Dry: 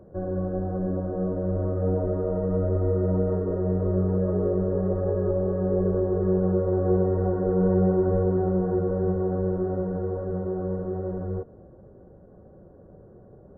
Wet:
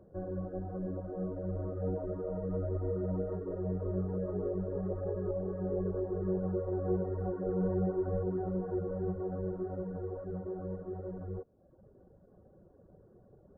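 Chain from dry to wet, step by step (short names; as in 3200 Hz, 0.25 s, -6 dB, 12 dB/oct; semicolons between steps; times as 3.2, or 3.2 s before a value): reverb removal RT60 0.82 s; gain -8 dB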